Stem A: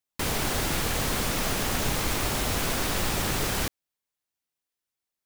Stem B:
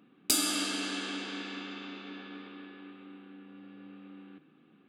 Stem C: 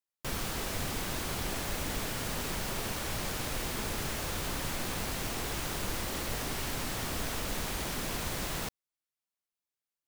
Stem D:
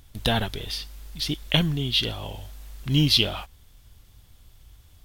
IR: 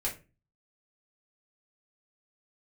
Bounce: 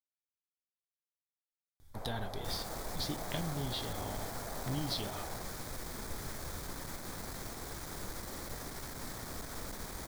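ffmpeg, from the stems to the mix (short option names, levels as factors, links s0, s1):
-filter_complex "[0:a]bandpass=f=700:t=q:w=2.3:csg=0,adelay=1750,volume=0.355[s0];[2:a]aeval=exprs='(tanh(31.6*val(0)+0.45)-tanh(0.45))/31.6':c=same,adelay=2200,volume=0.562[s1];[3:a]dynaudnorm=f=370:g=3:m=3.76,acompressor=threshold=0.0501:ratio=3,adelay=1800,volume=0.266,asplit=2[s2][s3];[s3]volume=0.282[s4];[4:a]atrim=start_sample=2205[s5];[s4][s5]afir=irnorm=-1:irlink=0[s6];[s0][s1][s2][s6]amix=inputs=4:normalize=0,equalizer=f=2800:w=3.4:g=-13"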